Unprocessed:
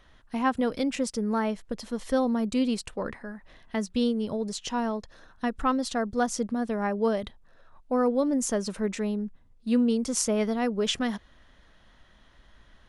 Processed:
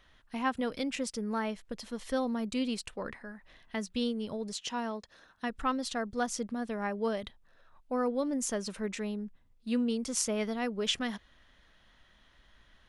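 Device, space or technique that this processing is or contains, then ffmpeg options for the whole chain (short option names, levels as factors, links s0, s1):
presence and air boost: -filter_complex "[0:a]equalizer=f=2700:t=o:w=2:g=5.5,highshelf=f=9100:g=5,asettb=1/sr,asplit=3[s0][s1][s2];[s0]atrim=end=4.544[s3];[s1]atrim=start=4.54:end=5.5,asetpts=PTS-STARTPTS,afade=t=in:d=0.004:c=qsin,afade=t=out:st=0.956:d=0.004:c=qsin,highpass=f=120:p=1[s4];[s2]atrim=start=5.496[s5];[s3][s4]acrossfade=d=0.004:c1=hsin:c2=qsin[s6];[s6][s5]acrossfade=d=0.004:c1=qsin:c2=hsin,volume=0.447"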